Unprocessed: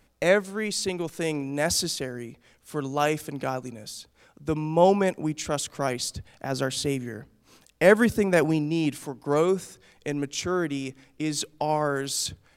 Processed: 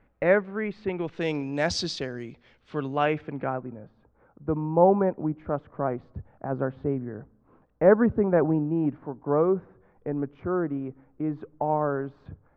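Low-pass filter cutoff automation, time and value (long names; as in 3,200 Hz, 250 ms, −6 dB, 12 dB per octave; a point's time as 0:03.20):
low-pass filter 24 dB per octave
0:00.86 2,100 Hz
0:01.35 5,100 Hz
0:02.22 5,100 Hz
0:03.11 2,800 Hz
0:03.87 1,300 Hz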